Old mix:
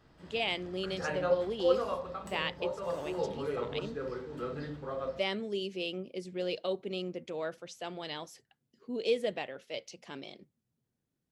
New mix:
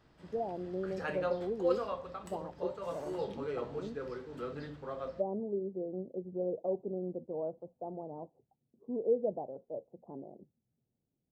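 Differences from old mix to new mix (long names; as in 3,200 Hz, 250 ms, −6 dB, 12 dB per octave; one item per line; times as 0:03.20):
speech: add Butterworth low-pass 860 Hz 48 dB per octave
background: send −6.5 dB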